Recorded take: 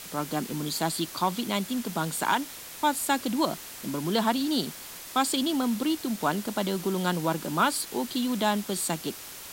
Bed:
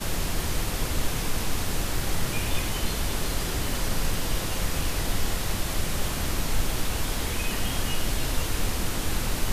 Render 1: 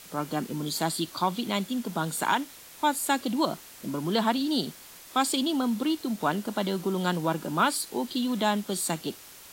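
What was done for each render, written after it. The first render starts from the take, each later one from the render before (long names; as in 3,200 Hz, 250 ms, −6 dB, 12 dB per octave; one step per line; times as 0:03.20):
noise reduction from a noise print 6 dB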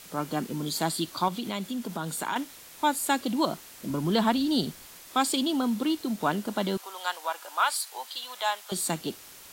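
0:01.28–0:02.36: downward compressor 2 to 1, threshold −30 dBFS
0:03.90–0:04.86: low-shelf EQ 110 Hz +12 dB
0:06.77–0:08.72: high-pass filter 700 Hz 24 dB per octave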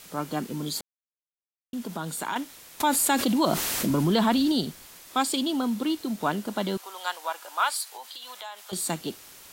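0:00.81–0:01.73: silence
0:02.80–0:04.52: envelope flattener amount 70%
0:07.83–0:08.73: downward compressor, threshold −36 dBFS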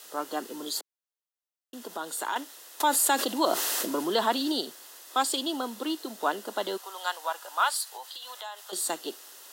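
high-pass filter 340 Hz 24 dB per octave
notch filter 2,300 Hz, Q 5.1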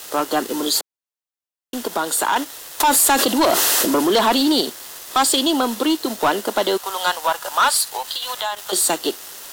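leveller curve on the samples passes 3
in parallel at −2.5 dB: downward compressor, threshold −26 dBFS, peak gain reduction 11 dB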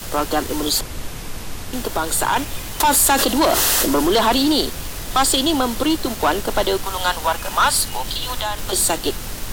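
mix in bed −3 dB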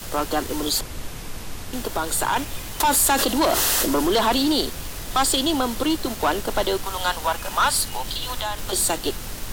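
level −3.5 dB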